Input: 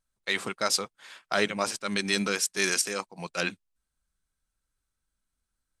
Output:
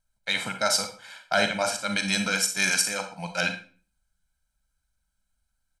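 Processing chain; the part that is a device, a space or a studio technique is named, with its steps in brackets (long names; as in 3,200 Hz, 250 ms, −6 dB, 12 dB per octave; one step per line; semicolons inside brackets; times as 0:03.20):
microphone above a desk (comb filter 1.3 ms, depth 82%; convolution reverb RT60 0.40 s, pre-delay 34 ms, DRR 6.5 dB)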